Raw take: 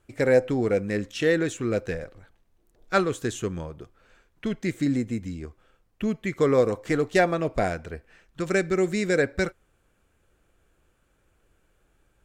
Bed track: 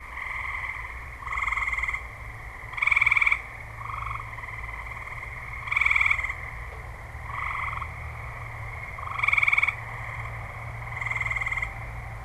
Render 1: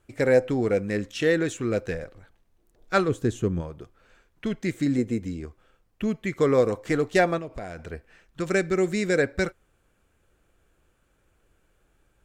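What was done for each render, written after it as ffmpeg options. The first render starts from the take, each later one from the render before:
ffmpeg -i in.wav -filter_complex "[0:a]asplit=3[link_01][link_02][link_03];[link_01]afade=type=out:start_time=3.07:duration=0.02[link_04];[link_02]tiltshelf=frequency=670:gain=6.5,afade=type=in:start_time=3.07:duration=0.02,afade=type=out:start_time=3.6:duration=0.02[link_05];[link_03]afade=type=in:start_time=3.6:duration=0.02[link_06];[link_04][link_05][link_06]amix=inputs=3:normalize=0,asettb=1/sr,asplit=3[link_07][link_08][link_09];[link_07]atrim=end=4.984[link_10];[link_08]atrim=start=4.98:end=5.41,asetpts=PTS-STARTPTS,afade=type=in:duration=0.004:curve=qsin,afade=type=out:start_time=0.426:duration=0.004:curve=qsin,equalizer=frequency=410:width=1.5:gain=7.5[link_11];[link_09]atrim=start=5.406[link_12];[link_10][link_11]acrossfade=duration=0.004:curve1=hsin:curve2=qsin[link_13];[link_13][link_12]acrossfade=duration=0.004:curve1=qsin:curve2=hsin,asettb=1/sr,asplit=3[link_14][link_15][link_16];[link_14]atrim=end=7.384[link_17];[link_15]atrim=start=7.38:end=7.83,asetpts=PTS-STARTPTS,afade=type=in:duration=0.004:curve=qsin,afade=type=out:start_time=0.446:duration=0.004:curve=qsin,acompressor=threshold=-32dB:ratio=6:attack=3.2:release=140:knee=1:detection=peak[link_18];[link_16]atrim=start=7.826[link_19];[link_17][link_18]acrossfade=duration=0.004:curve1=hsin:curve2=qsin[link_20];[link_20][link_19]acrossfade=duration=0.004:curve1=qsin:curve2=hsin" out.wav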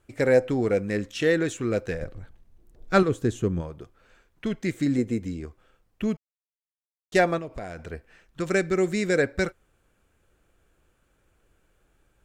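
ffmpeg -i in.wav -filter_complex "[0:a]asettb=1/sr,asplit=3[link_01][link_02][link_03];[link_01]atrim=end=2.014[link_04];[link_02]atrim=start=2.01:end=3.03,asetpts=PTS-STARTPTS,afade=type=in:duration=0.004:curve=qsin,afade=type=out:start_time=1.016:duration=0.004:curve=qsin,lowshelf=frequency=270:gain=11.5[link_05];[link_03]atrim=start=3.026[link_06];[link_04][link_05]acrossfade=duration=0.004:curve1=hsin:curve2=qsin[link_07];[link_07][link_06]acrossfade=duration=0.004:curve1=qsin:curve2=hsin,asplit=3[link_08][link_09][link_10];[link_08]atrim=end=6.17,asetpts=PTS-STARTPTS,afade=type=out:start_time=6.166:duration=0.004:curve=hsin[link_11];[link_09]atrim=start=6.17:end=7.12,asetpts=PTS-STARTPTS,volume=0[link_12];[link_10]atrim=start=7.12,asetpts=PTS-STARTPTS,afade=type=in:duration=0.004:curve=hsin[link_13];[link_11][link_12][link_13]concat=n=3:v=0:a=1" out.wav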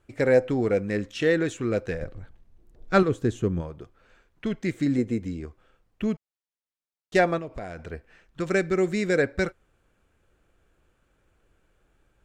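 ffmpeg -i in.wav -af "highshelf=frequency=7900:gain=-9" out.wav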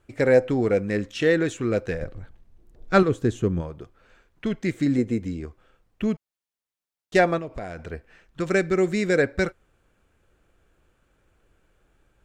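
ffmpeg -i in.wav -af "volume=2dB" out.wav

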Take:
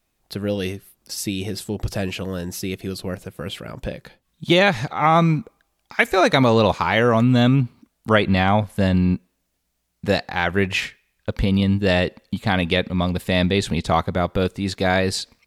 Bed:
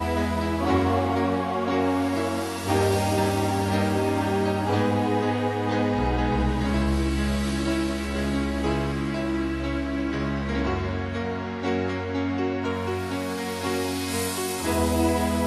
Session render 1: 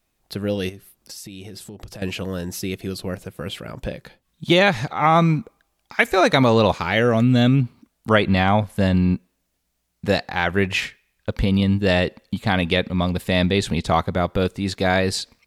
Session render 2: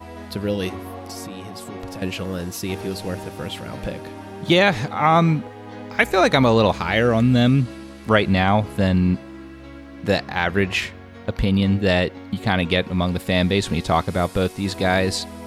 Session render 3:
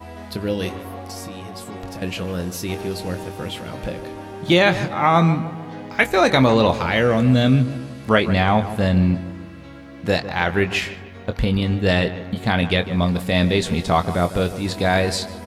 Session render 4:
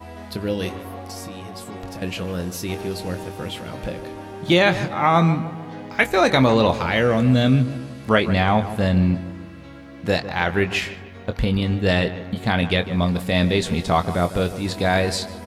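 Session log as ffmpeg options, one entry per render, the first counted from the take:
ffmpeg -i in.wav -filter_complex "[0:a]asettb=1/sr,asplit=3[link_01][link_02][link_03];[link_01]atrim=end=0.694[link_04];[link_02]atrim=start=0.69:end=2.02,asetpts=PTS-STARTPTS,afade=type=in:duration=0.004:curve=qsin,afade=type=out:start_time=1.326:duration=0.004:curve=qsin,acompressor=threshold=-33dB:ratio=12:attack=3.2:release=140:knee=1:detection=peak[link_05];[link_03]atrim=start=2.016[link_06];[link_04][link_05]acrossfade=duration=0.004:curve1=hsin:curve2=qsin[link_07];[link_07][link_06]acrossfade=duration=0.004:curve1=qsin:curve2=hsin,asettb=1/sr,asplit=3[link_08][link_09][link_10];[link_08]atrim=end=6.784[link_11];[link_09]atrim=start=6.78:end=7.63,asetpts=PTS-STARTPTS,afade=type=in:duration=0.004:curve=qsin,afade=type=out:start_time=0.846:duration=0.004:curve=qsin,equalizer=frequency=1000:width_type=o:width=0.56:gain=-9[link_12];[link_10]atrim=start=7.626[link_13];[link_11][link_12]acrossfade=duration=0.004:curve1=hsin:curve2=qsin[link_14];[link_14][link_13]acrossfade=duration=0.004:curve1=qsin:curve2=hsin" out.wav
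ffmpeg -i in.wav -i bed.wav -filter_complex "[1:a]volume=-12dB[link_01];[0:a][link_01]amix=inputs=2:normalize=0" out.wav
ffmpeg -i in.wav -filter_complex "[0:a]asplit=2[link_01][link_02];[link_02]adelay=23,volume=-10dB[link_03];[link_01][link_03]amix=inputs=2:normalize=0,asplit=2[link_04][link_05];[link_05]adelay=151,lowpass=frequency=2200:poles=1,volume=-13dB,asplit=2[link_06][link_07];[link_07]adelay=151,lowpass=frequency=2200:poles=1,volume=0.51,asplit=2[link_08][link_09];[link_09]adelay=151,lowpass=frequency=2200:poles=1,volume=0.51,asplit=2[link_10][link_11];[link_11]adelay=151,lowpass=frequency=2200:poles=1,volume=0.51,asplit=2[link_12][link_13];[link_13]adelay=151,lowpass=frequency=2200:poles=1,volume=0.51[link_14];[link_04][link_06][link_08][link_10][link_12][link_14]amix=inputs=6:normalize=0" out.wav
ffmpeg -i in.wav -af "volume=-1dB" out.wav

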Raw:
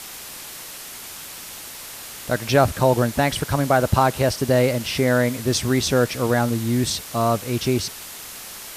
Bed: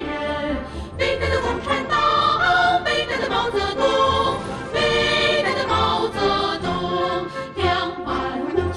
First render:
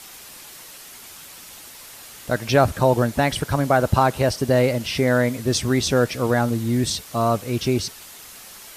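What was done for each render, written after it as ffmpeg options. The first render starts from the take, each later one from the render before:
ffmpeg -i in.wav -af "afftdn=noise_reduction=6:noise_floor=-37" out.wav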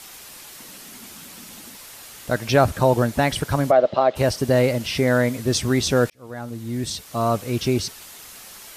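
ffmpeg -i in.wav -filter_complex "[0:a]asettb=1/sr,asplit=3[link_01][link_02][link_03];[link_01]atrim=end=0.604[link_04];[link_02]atrim=start=0.6:end=1.77,asetpts=PTS-STARTPTS,afade=type=in:duration=0.004:curve=qsin,afade=type=out:start_time=1.166:duration=0.004:curve=qsin,equalizer=frequency=220:width=1.5:gain=14[link_05];[link_03]atrim=start=1.766[link_06];[link_04][link_05]acrossfade=duration=0.004:curve1=hsin:curve2=qsin[link_07];[link_07][link_06]acrossfade=duration=0.004:curve1=qsin:curve2=hsin,asplit=3[link_08][link_09][link_10];[link_08]afade=type=out:start_time=3.7:duration=0.02[link_11];[link_09]highpass=350,equalizer=frequency=610:width_type=q:width=4:gain=9,equalizer=frequency=940:width_type=q:width=4:gain=-9,equalizer=frequency=1500:width_type=q:width=4:gain=-9,equalizer=frequency=2500:width_type=q:width=4:gain=-5,lowpass=frequency=3900:width=0.5412,lowpass=frequency=3900:width=1.3066,afade=type=in:start_time=3.7:duration=0.02,afade=type=out:start_time=4.15:duration=0.02[link_12];[link_10]afade=type=in:start_time=4.15:duration=0.02[link_13];[link_11][link_12][link_13]amix=inputs=3:normalize=0,asplit=2[link_14][link_15];[link_14]atrim=end=6.1,asetpts=PTS-STARTPTS,afade=type=out:start_time=6.096:duration=0.004:curve=hsin[link_16];[link_15]atrim=start=6.1,asetpts=PTS-STARTPTS,afade=type=in:duration=1.32[link_17];[link_16][link_17]concat=n=2:v=0:a=1" out.wav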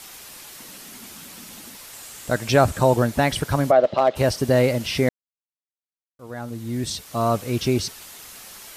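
ffmpeg -i in.wav -filter_complex "[0:a]asettb=1/sr,asplit=3[link_01][link_02][link_03];[link_01]atrim=end=1.934[link_04];[link_02]atrim=start=1.93:end=2.96,asetpts=PTS-STARTPTS,afade=type=in:duration=0.004:curve=qsin,afade=type=out:start_time=1.026:duration=0.004:curve=qsin,equalizer=frequency=7700:width_type=o:width=0.35:gain=6.5[link_05];[link_03]atrim=start=2.956[link_06];[link_04][link_05]acrossfade=duration=0.004:curve1=hsin:curve2=qsin[link_07];[link_07][link_06]acrossfade=duration=0.004:curve1=qsin:curve2=hsin,asettb=1/sr,asplit=3[link_08][link_09][link_10];[link_08]atrim=end=3.794[link_11];[link_09]atrim=start=3.79:end=4.4,asetpts=PTS-STARTPTS,afade=type=in:duration=0.004:curve=qsin,afade=type=out:start_time=0.606:duration=0.004:curve=qsin,asoftclip=type=hard:threshold=-10dB[link_12];[link_10]atrim=start=4.396[link_13];[link_11][link_12]acrossfade=duration=0.004:curve1=hsin:curve2=qsin[link_14];[link_14][link_13]acrossfade=duration=0.004:curve1=qsin:curve2=hsin,asplit=3[link_15][link_16][link_17];[link_15]atrim=end=5.09,asetpts=PTS-STARTPTS,afade=type=out:start_time=5.086:duration=0.004:curve=hsin[link_18];[link_16]atrim=start=5.09:end=6.19,asetpts=PTS-STARTPTS,volume=0[link_19];[link_17]atrim=start=6.19,asetpts=PTS-STARTPTS,afade=type=in:duration=0.004:curve=hsin[link_20];[link_18][link_19][link_20]concat=n=3:v=0:a=1" out.wav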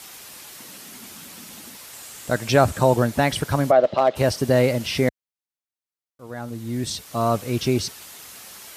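ffmpeg -i in.wav -af "highpass=60" out.wav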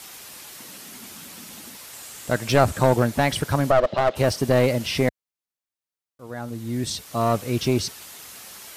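ffmpeg -i in.wav -af "aeval=exprs='clip(val(0),-1,0.106)':channel_layout=same" out.wav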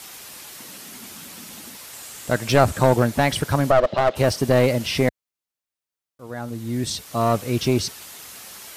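ffmpeg -i in.wav -af "volume=1.5dB" out.wav

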